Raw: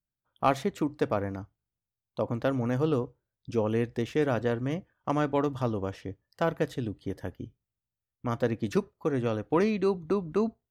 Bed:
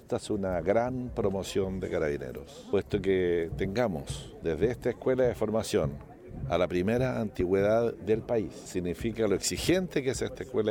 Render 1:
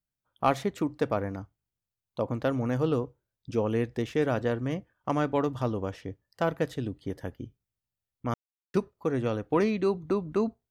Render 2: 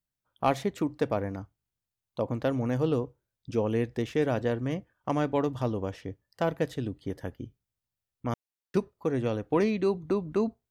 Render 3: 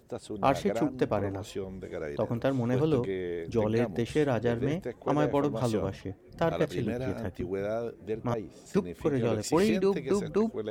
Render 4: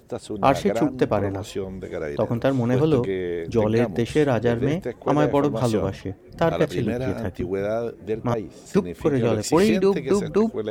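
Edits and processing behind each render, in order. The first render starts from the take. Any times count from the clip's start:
8.34–8.74 mute
dynamic EQ 1300 Hz, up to -5 dB, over -46 dBFS, Q 3.1
add bed -7 dB
gain +7 dB

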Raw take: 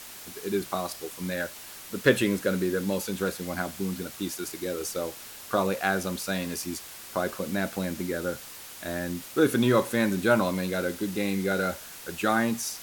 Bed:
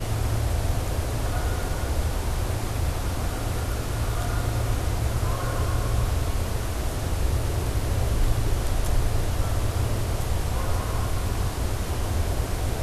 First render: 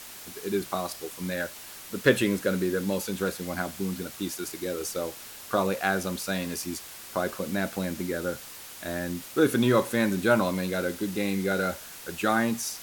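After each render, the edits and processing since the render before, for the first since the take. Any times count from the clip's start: nothing audible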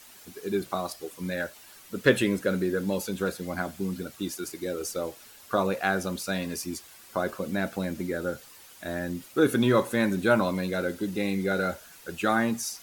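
denoiser 9 dB, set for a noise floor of -44 dBFS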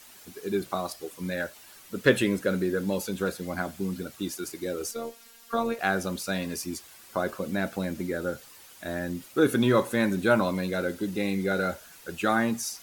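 4.91–5.79 robotiser 231 Hz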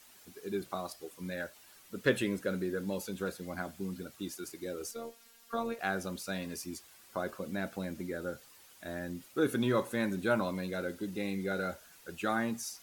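gain -7.5 dB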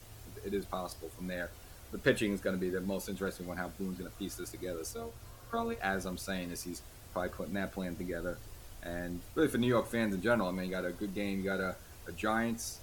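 add bed -26.5 dB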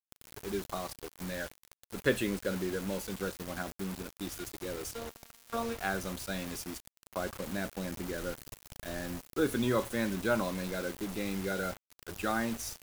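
bit-crush 7-bit

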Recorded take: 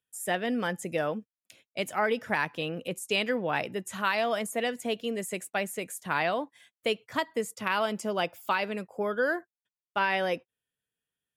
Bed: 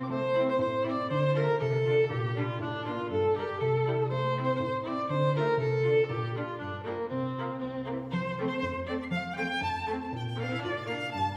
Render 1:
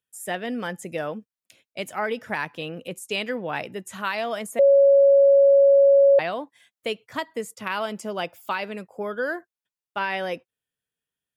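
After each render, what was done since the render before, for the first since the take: 4.59–6.19 bleep 556 Hz -11.5 dBFS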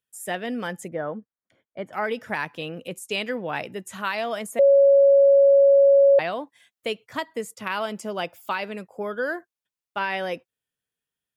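0.88–1.93 polynomial smoothing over 41 samples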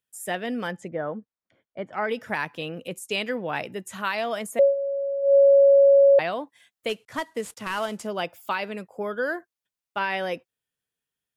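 0.71–2.09 air absorption 97 m; 4.62–5.35 dip -12.5 dB, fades 0.13 s; 6.89–8.07 CVSD 64 kbps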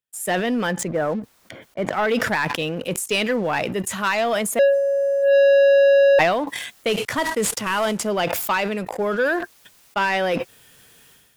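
sample leveller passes 2; sustainer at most 40 dB/s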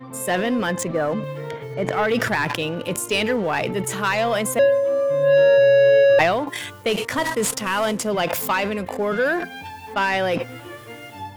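add bed -4.5 dB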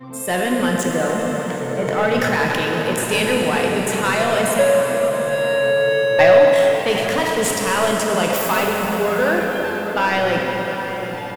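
outdoor echo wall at 130 m, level -11 dB; plate-style reverb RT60 4.9 s, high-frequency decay 0.85×, DRR -1 dB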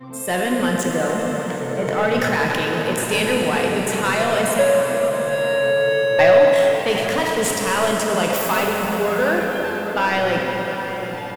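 gain -1 dB; limiter -3 dBFS, peak gain reduction 1 dB

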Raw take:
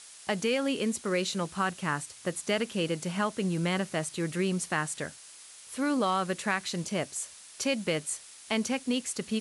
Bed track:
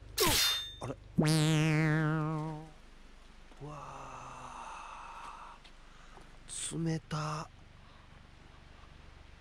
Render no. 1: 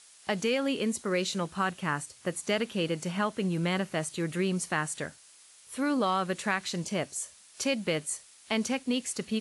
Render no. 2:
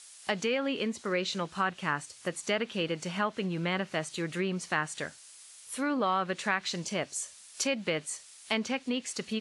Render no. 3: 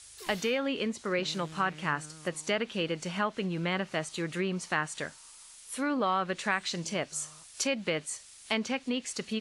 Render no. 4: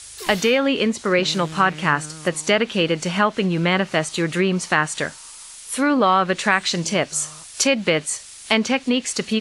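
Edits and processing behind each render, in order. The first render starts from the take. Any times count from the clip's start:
noise print and reduce 6 dB
treble ducked by the level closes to 2600 Hz, closed at -24 dBFS; tilt +1.5 dB/oct
add bed track -19 dB
gain +12 dB; limiter -3 dBFS, peak gain reduction 1 dB

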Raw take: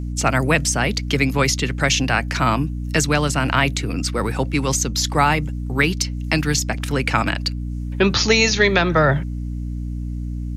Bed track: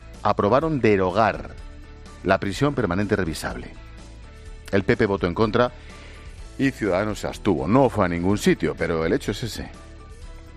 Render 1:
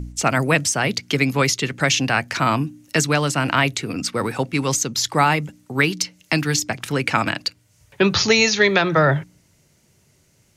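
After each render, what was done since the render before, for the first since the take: de-hum 60 Hz, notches 5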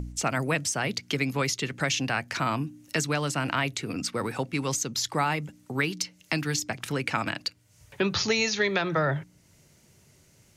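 compressor 1.5:1, threshold -39 dBFS, peak gain reduction 10 dB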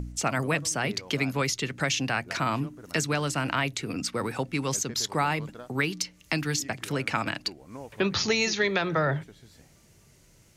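add bed track -25 dB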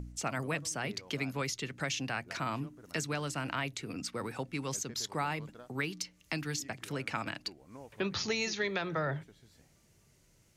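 gain -8 dB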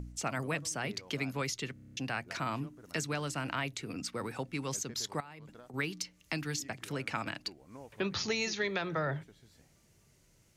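1.73 stutter in place 0.03 s, 8 plays; 5.2–5.74 compressor 8:1, threshold -46 dBFS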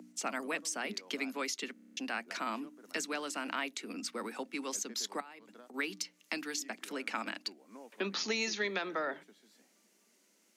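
steep high-pass 200 Hz 72 dB/oct; bell 520 Hz -2 dB 2 oct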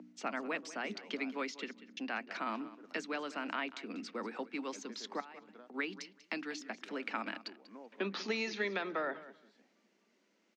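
air absorption 190 m; feedback echo 0.191 s, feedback 16%, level -16.5 dB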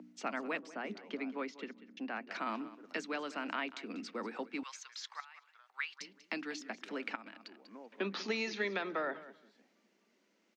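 0.59–2.27 high shelf 2700 Hz -12 dB; 4.63–6.01 HPF 1100 Hz 24 dB/oct; 7.15–7.66 compressor, threshold -47 dBFS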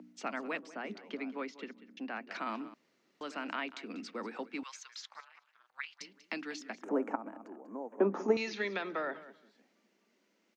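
2.74–3.21 room tone; 5.01–6.01 AM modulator 270 Hz, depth 95%; 6.83–8.37 EQ curve 130 Hz 0 dB, 280 Hz +10 dB, 880 Hz +11 dB, 4400 Hz -29 dB, 6500 Hz -1 dB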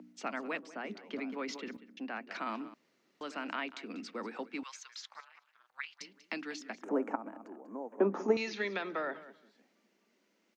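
1.08–1.77 sustainer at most 54 dB/s

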